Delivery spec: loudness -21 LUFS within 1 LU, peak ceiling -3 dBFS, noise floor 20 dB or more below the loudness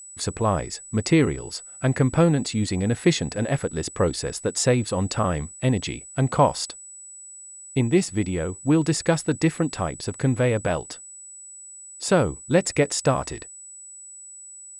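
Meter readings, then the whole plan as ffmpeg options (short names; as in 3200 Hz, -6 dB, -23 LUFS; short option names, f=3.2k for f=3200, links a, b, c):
steady tone 7900 Hz; tone level -40 dBFS; loudness -23.5 LUFS; peak -6.5 dBFS; loudness target -21.0 LUFS
-> -af "bandreject=f=7.9k:w=30"
-af "volume=2.5dB"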